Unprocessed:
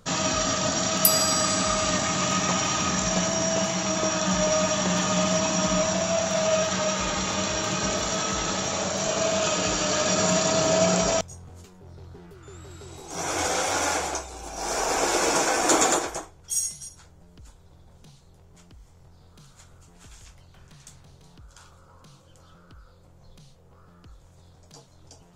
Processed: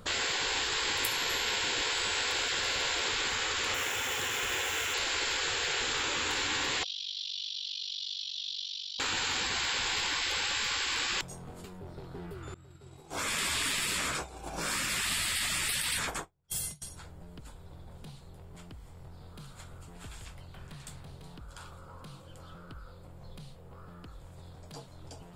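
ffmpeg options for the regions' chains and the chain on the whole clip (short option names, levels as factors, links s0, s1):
-filter_complex "[0:a]asettb=1/sr,asplit=3[s0][s1][s2];[s0]atrim=end=3.744[s3];[s1]atrim=start=3.74:end=4.94,asetpts=PTS-STARTPTS,afade=t=in:d=0.004:c=qsin,afade=t=out:st=1.196:d=0.004:c=qsin,aeval=exprs='val(0)+0.5*0.0178*sgn(val(0))':c=same,highpass=72,equalizer=f=4400:t=o:w=0.55:g=-11[s4];[s2]atrim=start=4.936[s5];[s3][s4]acrossfade=d=0.004:c1=hsin:c2=qsin[s6];[s6][s5]acrossfade=d=0.004:c1=qsin:c2=hsin,asettb=1/sr,asplit=3[s7][s8][s9];[s7]atrim=end=6.834[s10];[s8]atrim=start=6.83:end=9,asetpts=PTS-STARTPTS,afade=t=in:d=0.004:c=qsin,afade=t=out:st=2.166:d=0.004:c=qsin,asuperpass=centerf=4100:order=8:qfactor=1.8,aeval=exprs='val(0)*sin(2*PI*24*n/s)':c=same[s11];[s9]atrim=start=8.996[s12];[s10][s11]acrossfade=d=0.004:c1=hsin:c2=qsin[s13];[s13][s12]acrossfade=d=0.004:c1=qsin:c2=hsin,asettb=1/sr,asplit=3[s14][s15][s16];[s14]atrim=end=12.544[s17];[s15]atrim=start=12.54:end=16.82,asetpts=PTS-STARTPTS,afade=t=in:d=0.004:c=qsin,afade=t=out:st=4.276:d=0.004:c=qsin,agate=range=0.0224:threshold=0.0251:ratio=3:release=100:detection=peak,equalizer=f=140:t=o:w=0.86:g=7.5[s18];[s16]atrim=start=16.816[s19];[s17][s18]acrossfade=d=0.004:c1=hsin:c2=qsin[s20];[s20][s19]acrossfade=d=0.004:c1=qsin:c2=hsin,afftfilt=real='re*lt(hypot(re,im),0.0631)':imag='im*lt(hypot(re,im),0.0631)':win_size=1024:overlap=0.75,equalizer=f=6100:w=2.9:g=-12,volume=1.58"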